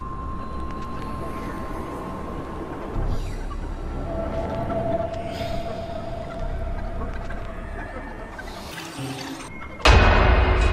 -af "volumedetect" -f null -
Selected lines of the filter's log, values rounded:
mean_volume: -24.4 dB
max_volume: -2.6 dB